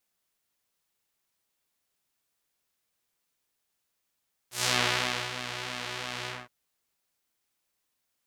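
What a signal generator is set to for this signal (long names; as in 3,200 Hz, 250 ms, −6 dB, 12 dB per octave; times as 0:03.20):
subtractive patch with pulse-width modulation B2, sub −9 dB, filter bandpass, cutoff 1,400 Hz, Q 0.87, filter envelope 3 octaves, attack 122 ms, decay 0.67 s, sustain −12.5 dB, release 0.21 s, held 1.76 s, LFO 3 Hz, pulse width 40%, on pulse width 15%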